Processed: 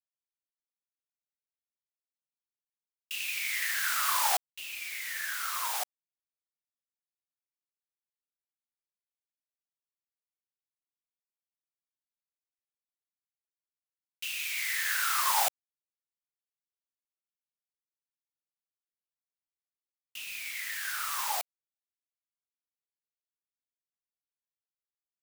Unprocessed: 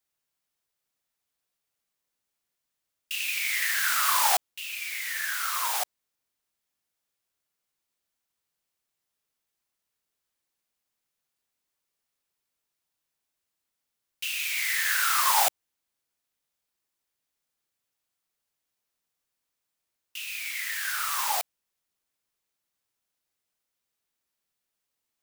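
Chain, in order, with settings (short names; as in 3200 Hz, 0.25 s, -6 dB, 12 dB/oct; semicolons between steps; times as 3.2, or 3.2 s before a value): requantised 8-bit, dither none; gain -4.5 dB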